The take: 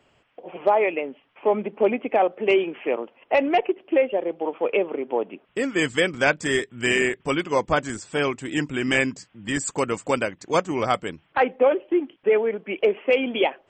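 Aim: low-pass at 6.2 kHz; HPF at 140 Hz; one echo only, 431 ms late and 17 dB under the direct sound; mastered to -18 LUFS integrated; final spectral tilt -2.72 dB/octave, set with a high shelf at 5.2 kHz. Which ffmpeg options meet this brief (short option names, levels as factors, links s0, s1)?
-af "highpass=140,lowpass=6200,highshelf=f=5200:g=-3.5,aecho=1:1:431:0.141,volume=1.88"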